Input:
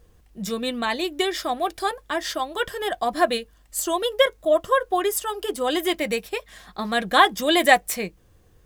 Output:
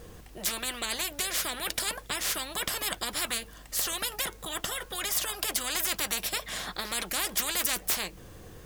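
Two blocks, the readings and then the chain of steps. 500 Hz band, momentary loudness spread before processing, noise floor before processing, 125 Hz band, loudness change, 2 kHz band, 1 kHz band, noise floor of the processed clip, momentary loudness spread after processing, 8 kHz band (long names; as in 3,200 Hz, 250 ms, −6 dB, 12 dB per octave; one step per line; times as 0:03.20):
−18.5 dB, 12 LU, −57 dBFS, can't be measured, −7.0 dB, −9.0 dB, −15.5 dB, −49 dBFS, 6 LU, +3.0 dB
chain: every bin compressed towards the loudest bin 10 to 1
level −6.5 dB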